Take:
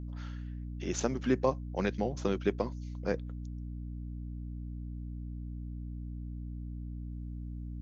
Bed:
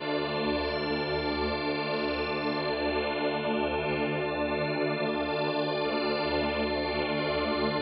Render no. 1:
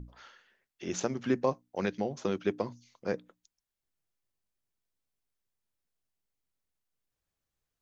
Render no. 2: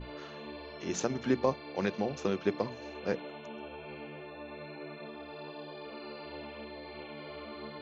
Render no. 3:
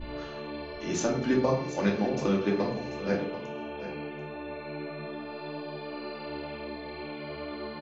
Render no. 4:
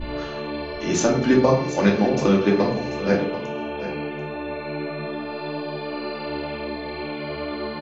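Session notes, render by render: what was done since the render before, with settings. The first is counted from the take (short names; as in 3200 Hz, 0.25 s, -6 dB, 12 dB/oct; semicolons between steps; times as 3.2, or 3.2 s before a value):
notches 60/120/180/240/300 Hz
add bed -15.5 dB
echo 0.739 s -13 dB; shoebox room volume 430 m³, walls furnished, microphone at 2.5 m
gain +8.5 dB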